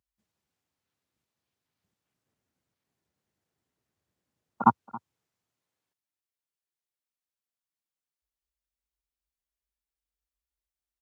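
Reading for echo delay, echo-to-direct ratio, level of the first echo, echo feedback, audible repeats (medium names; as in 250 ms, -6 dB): 274 ms, -20.0 dB, -20.0 dB, no regular repeats, 1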